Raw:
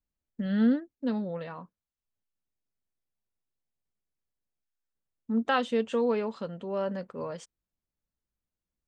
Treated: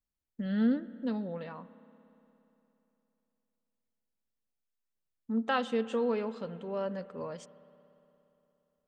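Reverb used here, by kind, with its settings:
spring reverb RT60 3.2 s, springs 58 ms, chirp 70 ms, DRR 16 dB
level −3.5 dB

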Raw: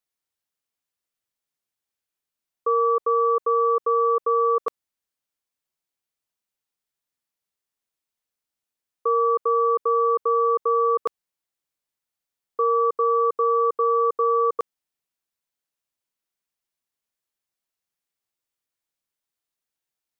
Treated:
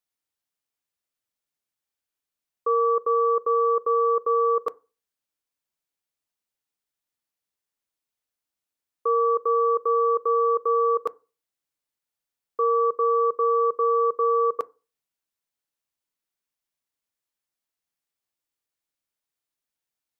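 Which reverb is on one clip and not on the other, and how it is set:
feedback delay network reverb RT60 0.32 s, low-frequency decay 1.1×, high-frequency decay 0.35×, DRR 17.5 dB
level −1.5 dB

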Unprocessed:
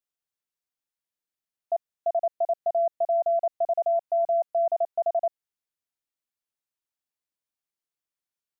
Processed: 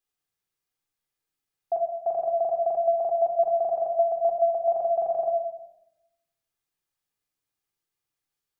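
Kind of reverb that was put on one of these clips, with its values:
rectangular room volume 2,700 cubic metres, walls furnished, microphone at 3.9 metres
level +2 dB

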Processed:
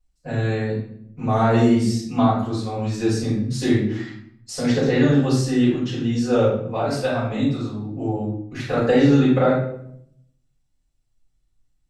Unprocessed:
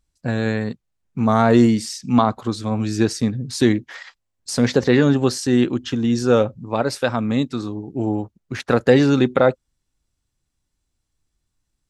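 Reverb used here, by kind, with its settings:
rectangular room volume 130 cubic metres, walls mixed, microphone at 5.1 metres
level −17.5 dB

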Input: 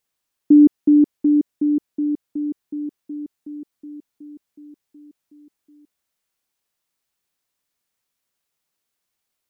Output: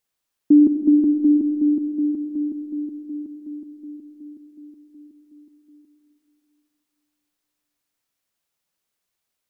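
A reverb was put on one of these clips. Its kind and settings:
comb and all-pass reverb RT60 2.9 s, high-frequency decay 0.8×, pre-delay 40 ms, DRR 6 dB
level −1.5 dB

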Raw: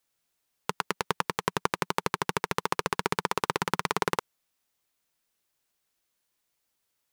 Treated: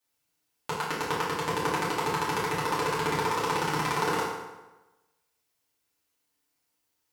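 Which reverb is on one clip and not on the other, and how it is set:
feedback delay network reverb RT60 1.1 s, low-frequency decay 0.95×, high-frequency decay 0.75×, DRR −9 dB
level −8 dB

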